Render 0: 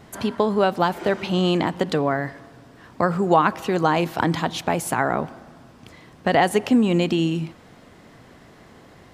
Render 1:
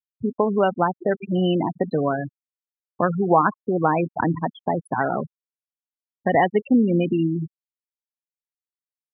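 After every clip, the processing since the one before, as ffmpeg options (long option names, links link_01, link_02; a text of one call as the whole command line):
ffmpeg -i in.wav -af "afftfilt=real='re*gte(hypot(re,im),0.178)':imag='im*gte(hypot(re,im),0.178)':win_size=1024:overlap=0.75" out.wav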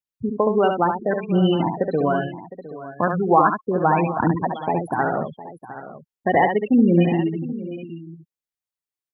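ffmpeg -i in.wav -af "aphaser=in_gain=1:out_gain=1:delay=3:decay=0.31:speed=0.72:type=triangular,aecho=1:1:70|710|776:0.531|0.15|0.158" out.wav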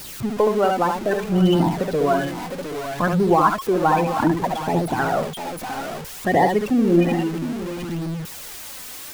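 ffmpeg -i in.wav -af "aeval=exprs='val(0)+0.5*0.0531*sgn(val(0))':channel_layout=same,flanger=delay=0.2:depth=3.8:regen=45:speed=0.62:shape=sinusoidal,volume=3dB" out.wav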